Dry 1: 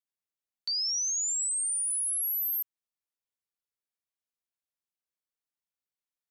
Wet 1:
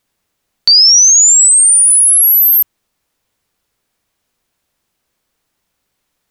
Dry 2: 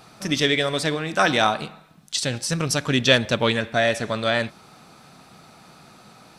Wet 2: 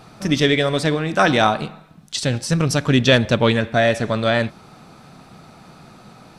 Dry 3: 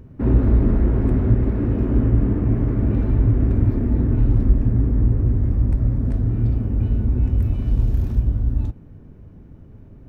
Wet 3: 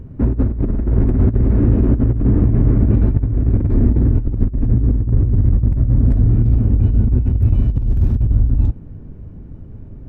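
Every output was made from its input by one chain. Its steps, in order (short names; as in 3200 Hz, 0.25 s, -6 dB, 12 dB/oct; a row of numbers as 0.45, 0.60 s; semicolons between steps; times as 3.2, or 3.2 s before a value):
tilt -1.5 dB/oct; negative-ratio compressor -13 dBFS, ratio -0.5; normalise peaks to -1.5 dBFS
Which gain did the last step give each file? +27.5, +3.0, +0.5 dB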